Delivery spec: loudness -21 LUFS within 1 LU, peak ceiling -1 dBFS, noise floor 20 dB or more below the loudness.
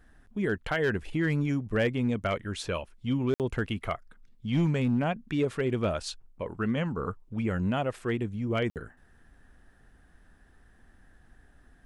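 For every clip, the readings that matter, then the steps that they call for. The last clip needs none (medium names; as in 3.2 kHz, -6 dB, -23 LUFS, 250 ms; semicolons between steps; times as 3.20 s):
clipped samples 0.4%; clipping level -19.5 dBFS; dropouts 2; longest dropout 58 ms; loudness -30.0 LUFS; peak level -19.5 dBFS; loudness target -21.0 LUFS
-> clip repair -19.5 dBFS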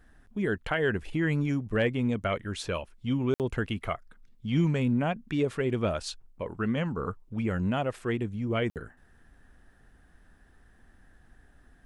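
clipped samples 0.0%; dropouts 2; longest dropout 58 ms
-> interpolate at 3.34/8.70 s, 58 ms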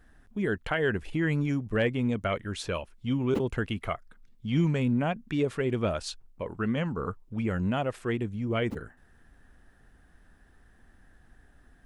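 dropouts 0; loudness -30.0 LUFS; peak level -14.5 dBFS; loudness target -21.0 LUFS
-> trim +9 dB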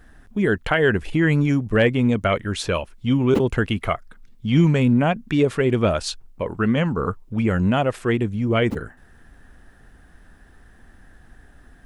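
loudness -21.0 LUFS; peak level -5.5 dBFS; noise floor -51 dBFS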